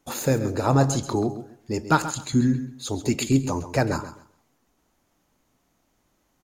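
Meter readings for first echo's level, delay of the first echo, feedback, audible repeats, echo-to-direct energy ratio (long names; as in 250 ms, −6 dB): −12.5 dB, 133 ms, 22%, 2, −12.5 dB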